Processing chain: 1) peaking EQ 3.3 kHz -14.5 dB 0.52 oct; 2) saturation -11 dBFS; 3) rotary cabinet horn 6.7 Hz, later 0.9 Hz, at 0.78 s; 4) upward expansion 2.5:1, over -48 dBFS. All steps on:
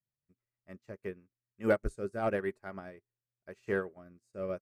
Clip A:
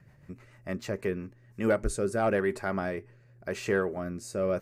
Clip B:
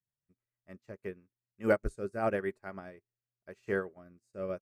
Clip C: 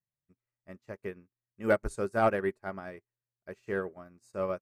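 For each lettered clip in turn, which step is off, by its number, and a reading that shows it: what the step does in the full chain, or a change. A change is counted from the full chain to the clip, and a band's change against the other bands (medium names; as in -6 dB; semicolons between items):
4, crest factor change -5.0 dB; 2, distortion -25 dB; 3, 1 kHz band +5.0 dB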